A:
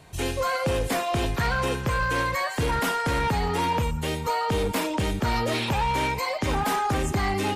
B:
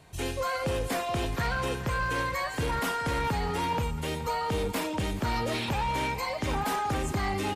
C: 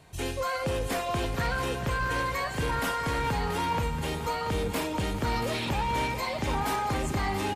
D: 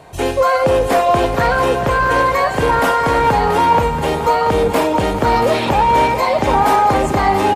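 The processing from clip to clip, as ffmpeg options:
-af "aecho=1:1:425|850|1275|1700:0.158|0.0745|0.035|0.0165,volume=-4.5dB"
-af "aecho=1:1:682|1364|2046|2728|3410:0.316|0.145|0.0669|0.0308|0.0142"
-af "equalizer=f=660:w=0.54:g=11.5,volume=7.5dB"

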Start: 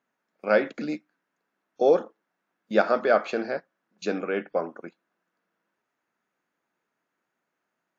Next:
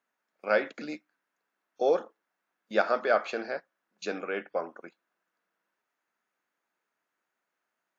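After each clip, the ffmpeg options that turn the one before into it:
-af "lowshelf=f=340:g=-11.5,volume=-1.5dB"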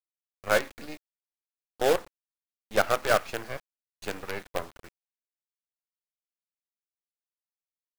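-af "aeval=exprs='0.299*(cos(1*acos(clip(val(0)/0.299,-1,1)))-cos(1*PI/2))+0.119*(cos(2*acos(clip(val(0)/0.299,-1,1)))-cos(2*PI/2))':c=same,acrusher=bits=5:dc=4:mix=0:aa=0.000001"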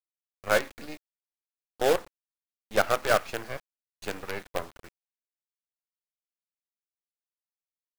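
-af anull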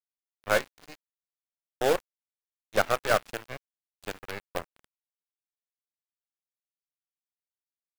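-af "aeval=exprs='sgn(val(0))*max(abs(val(0))-0.0168,0)':c=same"

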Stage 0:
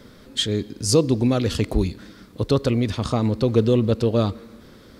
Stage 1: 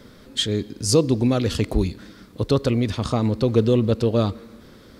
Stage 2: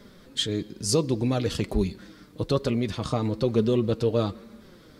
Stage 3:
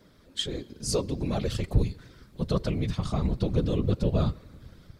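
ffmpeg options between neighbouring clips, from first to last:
-af anull
-af "flanger=delay=4.9:depth=1.8:regen=44:speed=1.1:shape=sinusoidal"
-af "dynaudnorm=f=230:g=3:m=3.5dB,asubboost=boost=11:cutoff=83,afftfilt=real='hypot(re,im)*cos(2*PI*random(0))':imag='hypot(re,im)*sin(2*PI*random(1))':win_size=512:overlap=0.75,volume=-1.5dB"

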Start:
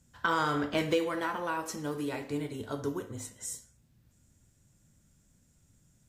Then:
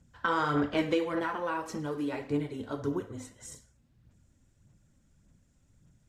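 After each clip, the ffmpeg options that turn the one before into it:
-af "aphaser=in_gain=1:out_gain=1:delay=3.9:decay=0.4:speed=1.7:type=sinusoidal,aemphasis=mode=reproduction:type=50kf"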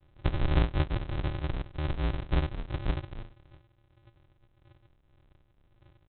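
-af "aecho=1:1:7.3:0.77,aresample=8000,acrusher=samples=35:mix=1:aa=0.000001,aresample=44100"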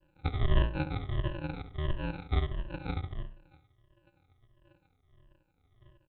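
-filter_complex "[0:a]afftfilt=real='re*pow(10,21/40*sin(2*PI*(1.3*log(max(b,1)*sr/1024/100)/log(2)-(-1.5)*(pts-256)/sr)))':imag='im*pow(10,21/40*sin(2*PI*(1.3*log(max(b,1)*sr/1024/100)/log(2)-(-1.5)*(pts-256)/sr)))':win_size=1024:overlap=0.75,asplit=2[a][b];[b]adelay=70,lowpass=f=1.4k:p=1,volume=-10dB,asplit=2[c][d];[d]adelay=70,lowpass=f=1.4k:p=1,volume=0.39,asplit=2[e][f];[f]adelay=70,lowpass=f=1.4k:p=1,volume=0.39,asplit=2[g][h];[h]adelay=70,lowpass=f=1.4k:p=1,volume=0.39[i];[a][c][e][g][i]amix=inputs=5:normalize=0,volume=-6.5dB"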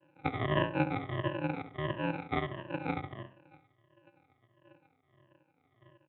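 -af "highpass=f=150:w=0.5412,highpass=f=150:w=1.3066,equalizer=f=190:t=q:w=4:g=-9,equalizer=f=400:t=q:w=4:g=-5,equalizer=f=1.4k:t=q:w=4:g=-5,lowpass=f=2.7k:w=0.5412,lowpass=f=2.7k:w=1.3066,volume=7dB"

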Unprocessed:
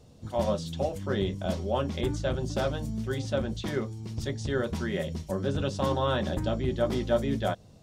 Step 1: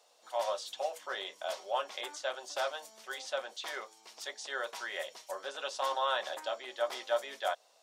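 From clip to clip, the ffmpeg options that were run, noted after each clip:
-af "highpass=f=660:w=0.5412,highpass=f=660:w=1.3066"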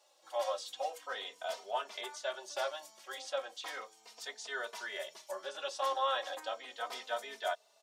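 -filter_complex "[0:a]asplit=2[a][b];[b]adelay=3.1,afreqshift=-0.36[c];[a][c]amix=inputs=2:normalize=1,volume=1dB"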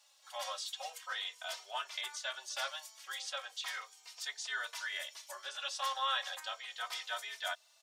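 -af "highpass=1.4k,volume=4dB"

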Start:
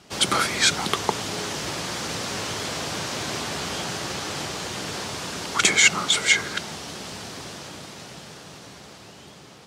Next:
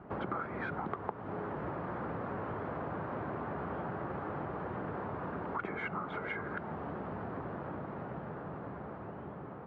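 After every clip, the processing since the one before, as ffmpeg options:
-af "lowpass=f=1.4k:w=0.5412,lowpass=f=1.4k:w=1.3066,acompressor=threshold=-40dB:ratio=4,volume=3dB"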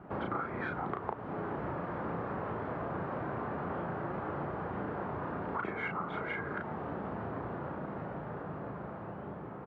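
-filter_complex "[0:a]asplit=2[a][b];[b]adelay=35,volume=-3.5dB[c];[a][c]amix=inputs=2:normalize=0"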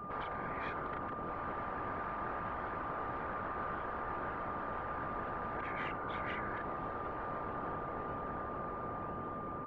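-af "afftfilt=real='hypot(re,im)*cos(2*PI*random(0))':imag='hypot(re,im)*sin(2*PI*random(1))':win_size=512:overlap=0.75,afftfilt=real='re*lt(hypot(re,im),0.0251)':imag='im*lt(hypot(re,im),0.0251)':win_size=1024:overlap=0.75,aeval=exprs='val(0)+0.00316*sin(2*PI*1200*n/s)':c=same,volume=7dB"

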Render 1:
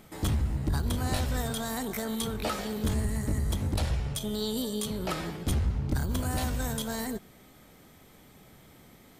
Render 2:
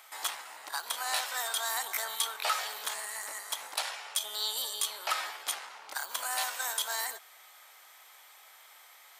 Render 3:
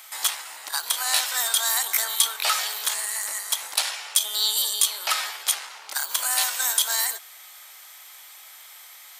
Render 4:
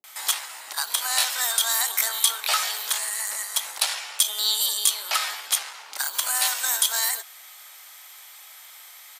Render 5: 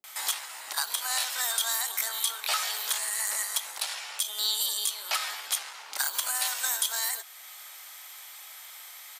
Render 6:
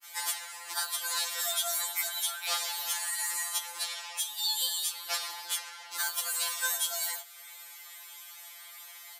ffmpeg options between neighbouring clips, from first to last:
-af "highpass=f=830:w=0.5412,highpass=f=830:w=1.3066,acontrast=71,volume=-2dB"
-af "highshelf=f=2.1k:g=11,volume=1.5dB"
-filter_complex "[0:a]acrossover=split=260[a][b];[b]adelay=40[c];[a][c]amix=inputs=2:normalize=0"
-af "alimiter=limit=-14.5dB:level=0:latency=1:release=451"
-af "afftfilt=real='re*2.83*eq(mod(b,8),0)':imag='im*2.83*eq(mod(b,8),0)':win_size=2048:overlap=0.75"

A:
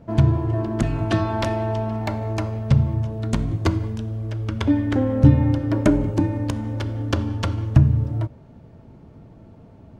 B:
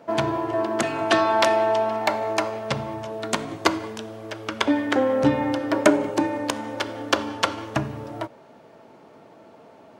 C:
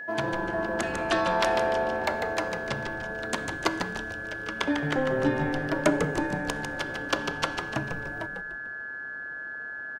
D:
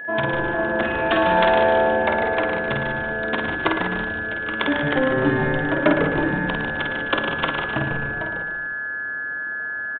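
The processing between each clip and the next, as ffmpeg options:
-af "highpass=520,volume=8dB"
-filter_complex "[0:a]aeval=exprs='val(0)+0.0355*sin(2*PI*1700*n/s)':c=same,asplit=2[a][b];[b]asplit=5[c][d][e][f][g];[c]adelay=148,afreqshift=-140,volume=-6dB[h];[d]adelay=296,afreqshift=-280,volume=-13.5dB[i];[e]adelay=444,afreqshift=-420,volume=-21.1dB[j];[f]adelay=592,afreqshift=-560,volume=-28.6dB[k];[g]adelay=740,afreqshift=-700,volume=-36.1dB[l];[h][i][j][k][l]amix=inputs=5:normalize=0[m];[a][m]amix=inputs=2:normalize=0,volume=-6.5dB"
-af "aecho=1:1:50|110|182|268.4|372.1:0.631|0.398|0.251|0.158|0.1,aresample=8000,aresample=44100,volume=4.5dB"

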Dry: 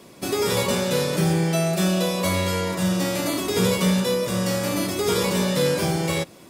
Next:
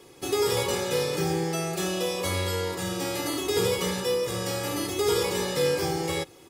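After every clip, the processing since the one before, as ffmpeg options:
-af "aecho=1:1:2.4:0.72,volume=-5.5dB"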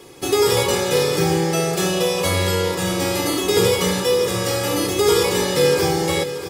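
-af "aecho=1:1:634|1268|1902|2536:0.251|0.108|0.0464|0.02,volume=8dB"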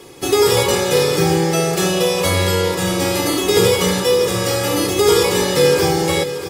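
-af "volume=3dB" -ar 44100 -c:a aac -b:a 96k

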